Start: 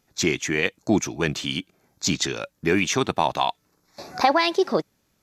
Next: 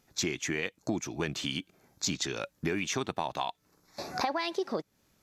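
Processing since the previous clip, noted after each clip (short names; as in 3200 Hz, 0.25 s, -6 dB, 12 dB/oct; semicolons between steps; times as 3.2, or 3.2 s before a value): compressor 4:1, threshold -30 dBFS, peak gain reduction 14 dB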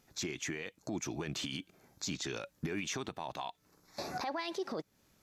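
limiter -28 dBFS, peak gain reduction 11.5 dB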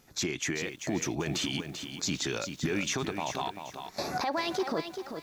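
lo-fi delay 0.39 s, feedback 35%, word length 10-bit, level -7.5 dB; gain +6.5 dB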